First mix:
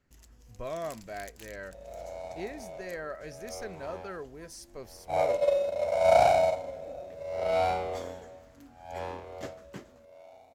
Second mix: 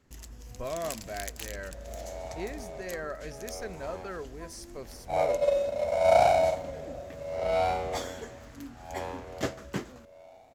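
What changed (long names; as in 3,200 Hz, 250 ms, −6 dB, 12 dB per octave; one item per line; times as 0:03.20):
speech: send on
first sound +10.5 dB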